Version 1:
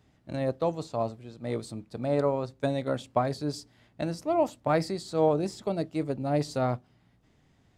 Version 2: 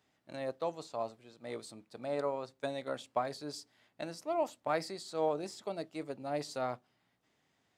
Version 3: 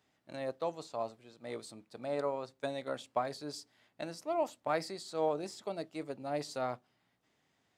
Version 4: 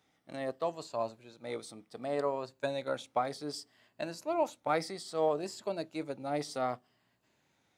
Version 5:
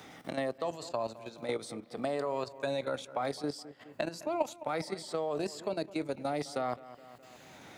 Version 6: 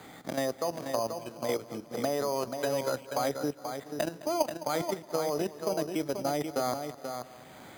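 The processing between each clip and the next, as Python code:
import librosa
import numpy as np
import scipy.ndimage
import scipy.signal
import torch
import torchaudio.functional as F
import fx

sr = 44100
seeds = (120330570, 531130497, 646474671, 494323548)

y1 = fx.highpass(x, sr, hz=660.0, slope=6)
y1 = y1 * librosa.db_to_amplitude(-4.0)
y2 = y1
y3 = fx.spec_ripple(y2, sr, per_octave=1.4, drift_hz=-0.64, depth_db=6)
y3 = y3 * librosa.db_to_amplitude(2.0)
y4 = fx.level_steps(y3, sr, step_db=13)
y4 = fx.echo_bbd(y4, sr, ms=209, stages=4096, feedback_pct=38, wet_db=-19.0)
y4 = fx.band_squash(y4, sr, depth_pct=70)
y4 = y4 * librosa.db_to_amplitude(6.5)
y5 = y4 + 10.0 ** (-7.0 / 20.0) * np.pad(y4, (int(484 * sr / 1000.0), 0))[:len(y4)]
y5 = np.repeat(scipy.signal.resample_poly(y5, 1, 8), 8)[:len(y5)]
y5 = y5 * librosa.db_to_amplitude(3.0)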